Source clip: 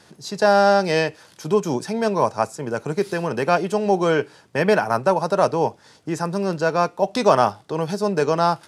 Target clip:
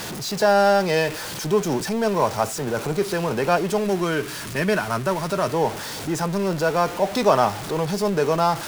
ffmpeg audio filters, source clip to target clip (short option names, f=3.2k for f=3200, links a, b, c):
-filter_complex "[0:a]aeval=exprs='val(0)+0.5*0.0631*sgn(val(0))':c=same,asettb=1/sr,asplit=3[a][b][c];[a]atrim=end=3.844[d];[b]atrim=start=3.84:end=5.54,asetpts=PTS-STARTPTS,afade=t=in:d=0.004:c=qsin,afade=t=out:st=1.696:d=0.004:c=qsin,equalizer=f=500:t=o:w=0.33:g=-9,equalizer=f=800:t=o:w=0.33:g=-10,equalizer=f=10k:t=o:w=0.33:g=3[e];[c]atrim=start=5.536[f];[d][e]acrossfade=d=0.004:c1=hsin:c2=qsin[g];[g][f]acrossfade=d=0.004:c1=qsin:c2=hsin,volume=-2.5dB"